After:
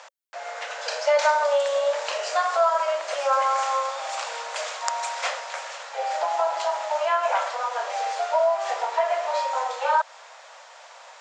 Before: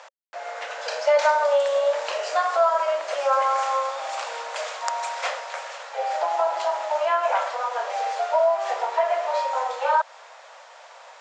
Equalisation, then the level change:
high-pass filter 410 Hz 6 dB per octave
high-shelf EQ 5,500 Hz +6 dB
0.0 dB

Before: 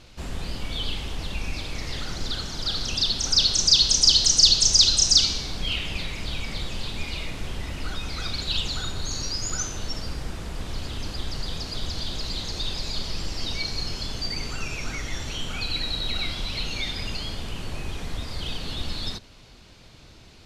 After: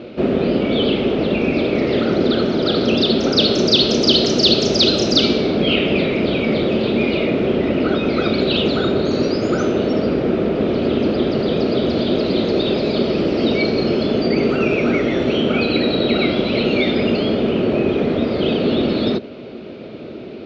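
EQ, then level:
loudspeaker in its box 230–3,700 Hz, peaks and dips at 230 Hz +6 dB, 380 Hz +5 dB, 620 Hz +6 dB, 1,300 Hz +9 dB, 2,400 Hz +5 dB
low shelf with overshoot 700 Hz +13 dB, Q 1.5
+7.5 dB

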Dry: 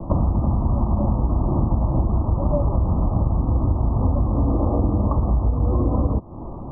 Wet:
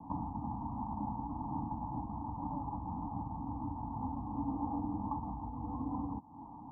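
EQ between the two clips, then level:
formant filter u
phaser with its sweep stopped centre 850 Hz, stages 4
+3.0 dB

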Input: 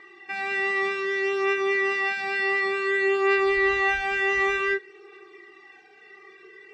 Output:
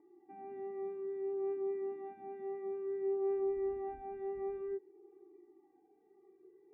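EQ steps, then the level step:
formant resonators in series u
0.0 dB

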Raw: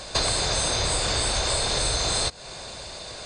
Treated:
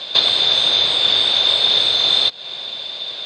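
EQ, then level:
high-pass filter 200 Hz 12 dB per octave
low-pass with resonance 3,500 Hz, resonance Q 9.7
0.0 dB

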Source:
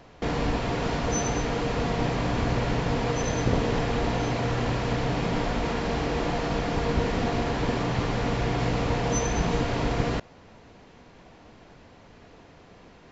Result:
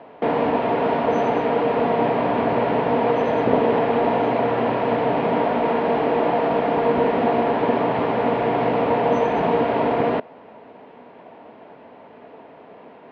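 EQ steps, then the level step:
loudspeaker in its box 200–3,000 Hz, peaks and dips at 250 Hz +6 dB, 440 Hz +7 dB, 640 Hz +9 dB, 910 Hz +8 dB
+3.0 dB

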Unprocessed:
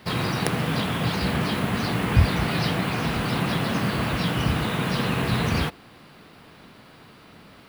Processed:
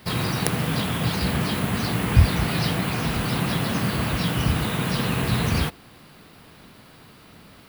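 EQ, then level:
low-shelf EQ 130 Hz +6 dB
high-shelf EQ 6,700 Hz +10.5 dB
−1.5 dB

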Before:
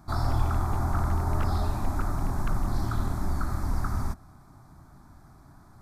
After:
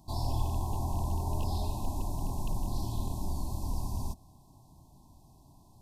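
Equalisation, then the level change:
linear-phase brick-wall band-stop 1,100–2,500 Hz
high-shelf EQ 2,500 Hz +6.5 dB
−5.5 dB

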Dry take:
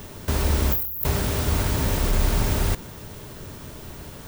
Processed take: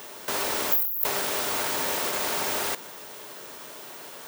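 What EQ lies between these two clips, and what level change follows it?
high-pass filter 520 Hz 12 dB per octave
+2.0 dB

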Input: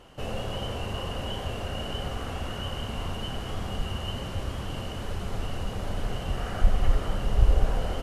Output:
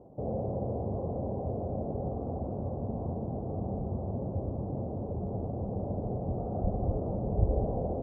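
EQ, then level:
high-pass filter 100 Hz 12 dB per octave
Butterworth low-pass 760 Hz 36 dB per octave
high-frequency loss of the air 460 metres
+3.5 dB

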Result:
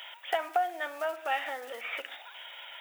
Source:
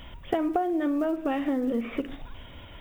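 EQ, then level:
high-pass filter 810 Hz 24 dB per octave
parametric band 1,100 Hz −14 dB 0.21 octaves
+6.5 dB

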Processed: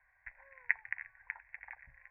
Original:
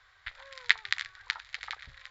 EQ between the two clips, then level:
linear-phase brick-wall low-pass 2,800 Hz
parametric band 87 Hz −6.5 dB 0.69 octaves
phaser with its sweep stopped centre 1,900 Hz, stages 8
−6.0 dB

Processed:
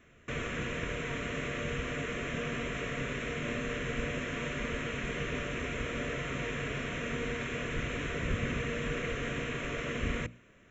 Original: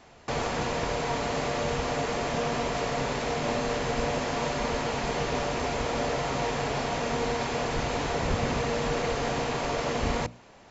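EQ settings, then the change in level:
dynamic equaliser 2,700 Hz, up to +3 dB, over −45 dBFS, Q 0.8
phaser with its sweep stopped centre 2,000 Hz, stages 4
−3.5 dB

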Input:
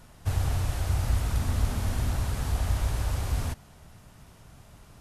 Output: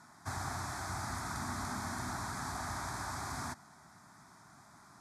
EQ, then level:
band-pass filter 280–7,300 Hz
phaser with its sweep stopped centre 1,200 Hz, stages 4
+3.0 dB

